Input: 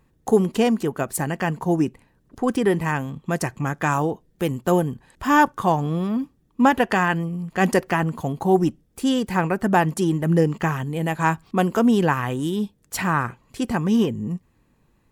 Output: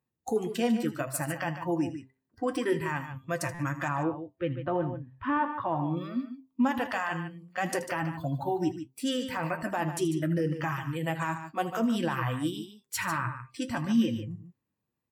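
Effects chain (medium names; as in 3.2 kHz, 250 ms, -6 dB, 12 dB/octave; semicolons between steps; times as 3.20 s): high-pass 91 Hz 12 dB/octave; de-hum 132 Hz, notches 9; spectral noise reduction 18 dB; 3.88–5.97 s: Bessel low-pass 2 kHz, order 8; peak limiter -15.5 dBFS, peak gain reduction 10.5 dB; flange 1.8 Hz, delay 7.5 ms, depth 2.7 ms, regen +54%; multi-tap echo 79/80/147 ms -16/-19.5/-10.5 dB; buffer glitch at 3.54 s, samples 256, times 8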